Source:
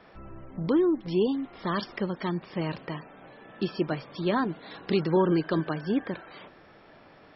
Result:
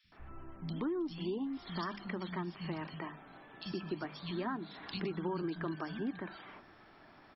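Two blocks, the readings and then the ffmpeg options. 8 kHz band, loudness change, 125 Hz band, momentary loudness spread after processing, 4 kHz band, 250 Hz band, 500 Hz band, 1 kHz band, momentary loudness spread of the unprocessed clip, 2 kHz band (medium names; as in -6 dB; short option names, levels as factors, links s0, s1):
no reading, -11.0 dB, -10.0 dB, 16 LU, -6.5 dB, -10.5 dB, -13.0 dB, -9.0 dB, 16 LU, -7.5 dB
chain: -filter_complex "[0:a]equalizer=f=510:w=2.5:g=-10.5,bandreject=f=50:t=h:w=6,bandreject=f=100:t=h:w=6,bandreject=f=150:t=h:w=6,bandreject=f=200:t=h:w=6,acrossover=split=170|2700[s0][s1][s2];[s0]adelay=40[s3];[s1]adelay=120[s4];[s3][s4][s2]amix=inputs=3:normalize=0,acompressor=threshold=0.0224:ratio=3,volume=0.75"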